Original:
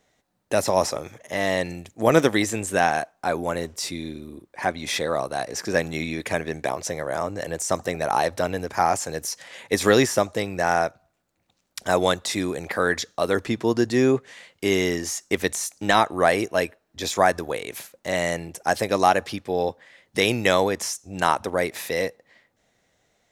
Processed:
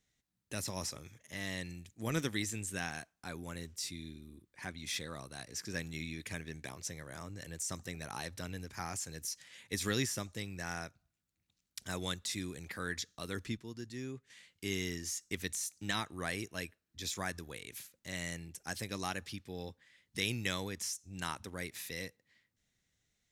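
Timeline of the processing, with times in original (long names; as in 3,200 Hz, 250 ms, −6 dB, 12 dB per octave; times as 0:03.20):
0:13.57–0:14.30: clip gain −8 dB
whole clip: guitar amp tone stack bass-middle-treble 6-0-2; level +5 dB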